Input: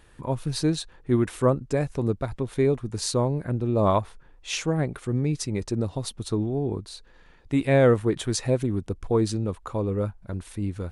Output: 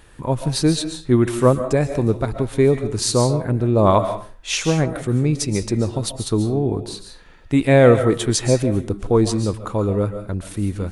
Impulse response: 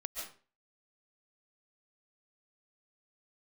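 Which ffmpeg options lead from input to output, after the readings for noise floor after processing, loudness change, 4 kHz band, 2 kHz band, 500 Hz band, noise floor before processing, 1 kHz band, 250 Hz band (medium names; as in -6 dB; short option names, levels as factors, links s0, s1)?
-43 dBFS, +6.5 dB, +7.5 dB, +7.0 dB, +7.0 dB, -53 dBFS, +7.0 dB, +6.5 dB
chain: -filter_complex "[0:a]asplit=2[s0][s1];[1:a]atrim=start_sample=2205,highshelf=f=5500:g=6.5[s2];[s1][s2]afir=irnorm=-1:irlink=0,volume=0.708[s3];[s0][s3]amix=inputs=2:normalize=0,volume=1.41"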